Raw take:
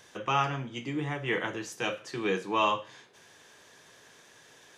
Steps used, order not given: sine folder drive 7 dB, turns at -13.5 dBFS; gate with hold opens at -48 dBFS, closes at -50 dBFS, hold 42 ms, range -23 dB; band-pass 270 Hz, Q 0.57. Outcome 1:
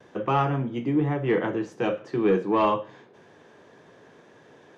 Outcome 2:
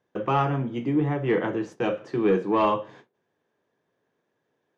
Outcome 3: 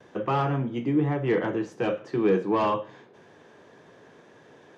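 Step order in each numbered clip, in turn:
band-pass > sine folder > gate with hold; band-pass > gate with hold > sine folder; sine folder > band-pass > gate with hold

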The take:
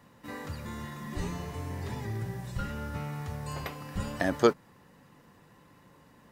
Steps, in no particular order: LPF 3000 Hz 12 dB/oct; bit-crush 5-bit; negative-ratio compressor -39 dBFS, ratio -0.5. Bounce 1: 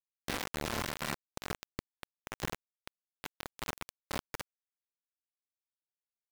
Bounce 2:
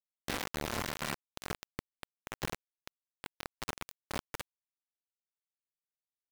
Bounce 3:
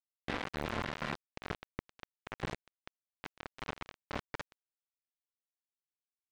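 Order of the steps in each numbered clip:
LPF > negative-ratio compressor > bit-crush; negative-ratio compressor > LPF > bit-crush; negative-ratio compressor > bit-crush > LPF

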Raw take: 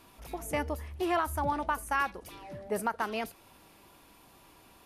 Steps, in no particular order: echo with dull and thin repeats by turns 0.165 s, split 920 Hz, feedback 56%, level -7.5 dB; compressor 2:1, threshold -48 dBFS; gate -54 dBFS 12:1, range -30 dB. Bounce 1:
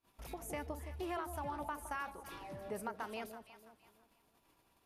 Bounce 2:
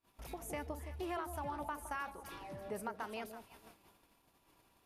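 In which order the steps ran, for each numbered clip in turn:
compressor > gate > echo with dull and thin repeats by turns; compressor > echo with dull and thin repeats by turns > gate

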